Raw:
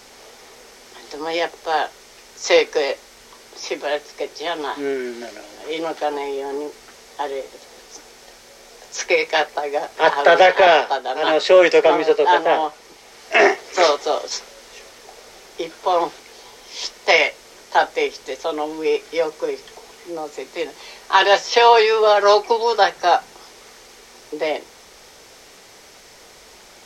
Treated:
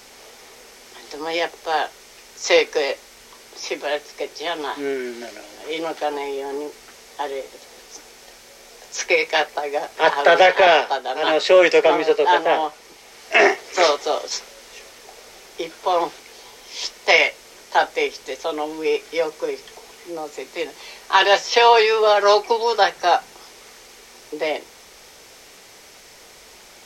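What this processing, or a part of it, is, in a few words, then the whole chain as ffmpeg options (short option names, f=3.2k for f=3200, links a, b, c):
presence and air boost: -af "equalizer=f=2.5k:t=o:w=0.77:g=2.5,highshelf=f=9.2k:g=6,volume=-1.5dB"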